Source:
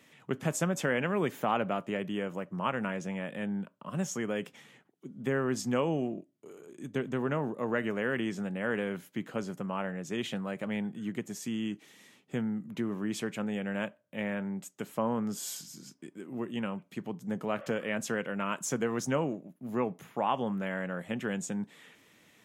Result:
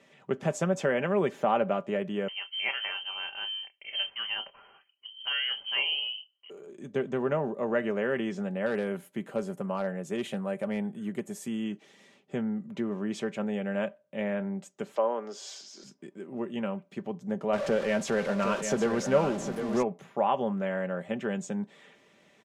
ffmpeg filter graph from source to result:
-filter_complex "[0:a]asettb=1/sr,asplit=3[s0][s1][s2];[s0]atrim=end=2.284[s3];[s1]atrim=start=2.28:end=6.5,asetpts=PTS-STARTPTS,afade=t=in:d=0.004:c=qsin,afade=t=out:st=4.216:d=0.004:c=qsin,asplit=2[s4][s5];[s5]adelay=28,volume=0.299[s6];[s4][s6]amix=inputs=2:normalize=0,atrim=end_sample=186102,lowpass=f=2800:t=q:w=0.5098,lowpass=f=2800:t=q:w=0.6013,lowpass=f=2800:t=q:w=0.9,lowpass=f=2800:t=q:w=2.563,afreqshift=-3300[s7];[s2]atrim=start=6.496[s8];[s3][s7]acrossfade=d=0.004:c1=hsin:c2=qsin[s9];[s9][s8]acrossfade=d=0.004:c1=qsin:c2=hsin,asettb=1/sr,asplit=3[s10][s11][s12];[s10]atrim=end=8.664[s13];[s11]atrim=start=8.66:end=11.64,asetpts=PTS-STARTPTS,afade=t=in:d=0.004:c=qsin,afade=t=out:st=2.976:d=0.004:c=qsin,highshelf=f=7800:t=q:w=1.5:g=11.5,volume=15.8,asoftclip=hard,volume=0.0631[s14];[s12]atrim=start=11.636[s15];[s13][s14]acrossfade=d=0.004:c1=hsin:c2=qsin[s16];[s16][s15]acrossfade=d=0.004:c1=qsin:c2=hsin,asettb=1/sr,asplit=3[s17][s18][s19];[s17]atrim=end=14.964[s20];[s18]atrim=start=14.96:end=15.84,asetpts=PTS-STARTPTS,afade=t=in:d=0.004:c=qsin,afade=t=out:st=0.876:d=0.004:c=qsin,highpass=f=340:w=0.5412,highpass=f=340:w=1.3066,highshelf=f=7700:t=q:w=1.5:g=-11,acompressor=mode=upward:threshold=0.0112:ratio=2.5:attack=3.2:release=140:knee=2.83:detection=peak[s21];[s19]atrim=start=15.836[s22];[s20][s21]acrossfade=d=0.004:c1=hsin:c2=qsin[s23];[s23][s22]acrossfade=d=0.004:c1=qsin:c2=hsin,asettb=1/sr,asplit=3[s24][s25][s26];[s24]atrim=end=17.534[s27];[s25]atrim=start=17.53:end=19.83,asetpts=PTS-STARTPTS,afade=t=in:d=0.004:c=qsin,afade=t=out:st=2.296:d=0.004:c=qsin,aeval=exprs='val(0)+0.5*0.02*sgn(val(0))':c=same,aecho=1:1:757:0.422,atrim=end_sample=101430[s28];[s26]atrim=start=19.826[s29];[s27][s28]acrossfade=d=0.004:c1=hsin:c2=qsin[s30];[s30][s29]acrossfade=d=0.004:c1=qsin:c2=hsin,lowpass=6900,equalizer=f=570:t=o:w=1.2:g=7.5,aecho=1:1:5.1:0.42,volume=0.794"

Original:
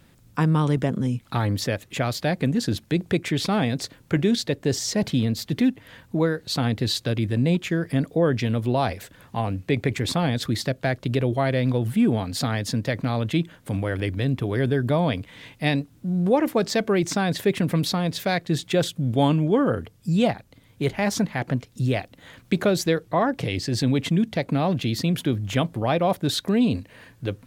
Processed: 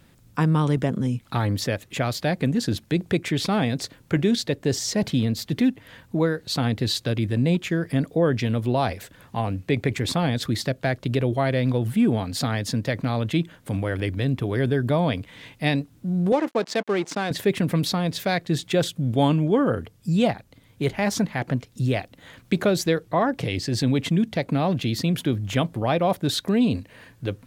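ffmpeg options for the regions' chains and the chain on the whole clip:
-filter_complex "[0:a]asettb=1/sr,asplit=3[s0][s1][s2];[s0]atrim=end=16.324[s3];[s1]atrim=start=16.32:end=17.31,asetpts=PTS-STARTPTS,afade=t=in:d=0.004:c=qsin,afade=t=out:st=0.986:d=0.004:c=qsin,aeval=exprs='sgn(val(0))*max(abs(val(0))-0.0178,0)':c=same,adynamicsmooth=sensitivity=3.5:basefreq=6900,highpass=240[s4];[s2]atrim=start=17.306[s5];[s3][s4]acrossfade=d=0.004:c1=hsin:c2=qsin[s6];[s6][s5]acrossfade=d=0.004:c1=qsin:c2=hsin"

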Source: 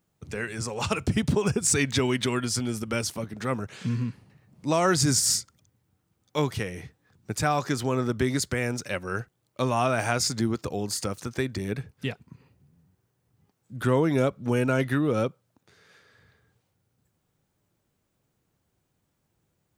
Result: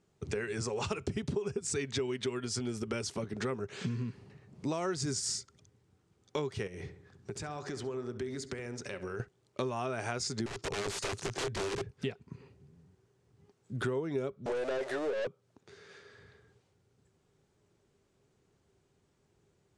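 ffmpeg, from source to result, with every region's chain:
-filter_complex "[0:a]asettb=1/sr,asplit=3[s0][s1][s2];[s0]atrim=end=6.674[s3];[s1]atrim=start=6.67:end=9.2,asetpts=PTS-STARTPTS,afade=t=in:d=0.004:c=qsin,afade=t=out:st=2.526:d=0.004:c=qsin,acompressor=threshold=0.01:ratio=6:attack=3.2:release=140:knee=1:detection=peak,asplit=2[s4][s5];[s5]adelay=67,lowpass=f=2400:p=1,volume=0.266,asplit=2[s6][s7];[s7]adelay=67,lowpass=f=2400:p=1,volume=0.54,asplit=2[s8][s9];[s9]adelay=67,lowpass=f=2400:p=1,volume=0.54,asplit=2[s10][s11];[s11]adelay=67,lowpass=f=2400:p=1,volume=0.54,asplit=2[s12][s13];[s13]adelay=67,lowpass=f=2400:p=1,volume=0.54,asplit=2[s14][s15];[s15]adelay=67,lowpass=f=2400:p=1,volume=0.54[s16];[s4][s6][s8][s10][s12][s14][s16]amix=inputs=7:normalize=0,atrim=end_sample=111573[s17];[s2]atrim=start=9.196[s18];[s3][s17]acrossfade=d=0.004:c1=hsin:c2=qsin[s19];[s19][s18]acrossfade=d=0.004:c1=qsin:c2=hsin,asettb=1/sr,asplit=3[s20][s21][s22];[s20]atrim=end=10.464[s23];[s21]atrim=start=10.46:end=11.91,asetpts=PTS-STARTPTS,afade=t=in:d=0.004:c=qsin,afade=t=out:st=1.446:d=0.004:c=qsin,equalizer=f=110:t=o:w=0.58:g=7,aeval=exprs='(mod(25.1*val(0)+1,2)-1)/25.1':c=same,bandreject=f=240:w=6.5[s24];[s22]atrim=start=11.906[s25];[s23][s24]acrossfade=d=0.004:c1=hsin:c2=qsin[s26];[s26][s25]acrossfade=d=0.004:c1=qsin:c2=hsin,asettb=1/sr,asplit=3[s27][s28][s29];[s27]atrim=end=14.464[s30];[s28]atrim=start=14.46:end=15.27,asetpts=PTS-STARTPTS,afade=t=in:d=0.004:c=qsin,afade=t=out:st=0.806:d=0.004:c=qsin,aeval=exprs='val(0)+0.5*0.0447*sgn(val(0))':c=same,highpass=f=570:t=q:w=5.3,aeval=exprs='(tanh(12.6*val(0)+0.25)-tanh(0.25))/12.6':c=same[s31];[s29]atrim=start=15.266[s32];[s30][s31]acrossfade=d=0.004:c1=hsin:c2=qsin[s33];[s33][s32]acrossfade=d=0.004:c1=qsin:c2=hsin,lowpass=f=8400:w=0.5412,lowpass=f=8400:w=1.3066,equalizer=f=400:t=o:w=0.21:g=13,acompressor=threshold=0.02:ratio=6,volume=1.19"

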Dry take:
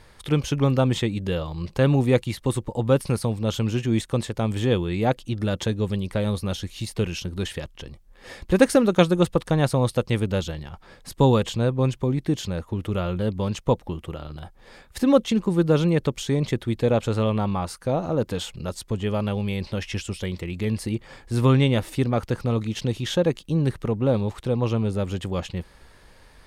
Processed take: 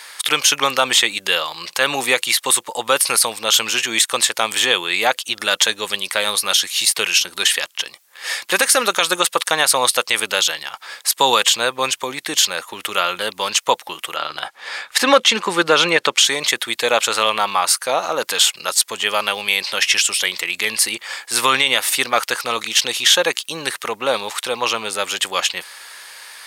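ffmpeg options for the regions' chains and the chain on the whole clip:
-filter_complex "[0:a]asettb=1/sr,asplit=3[s0][s1][s2];[s0]atrim=end=14.164[s3];[s1]atrim=start=14.16:end=16.25,asetpts=PTS-STARTPTS,afade=t=in:d=0.004:c=qsin,afade=t=out:st=2.086:d=0.004:c=qsin,aemphasis=mode=reproduction:type=50fm,acontrast=32[s4];[s2]atrim=start=16.246[s5];[s3][s4]acrossfade=d=0.004:c1=hsin:c2=qsin[s6];[s6][s5]acrossfade=d=0.004:c1=qsin:c2=hsin,highpass=1300,highshelf=f=6100:g=7,alimiter=level_in=9.44:limit=0.891:release=50:level=0:latency=1,volume=0.891"

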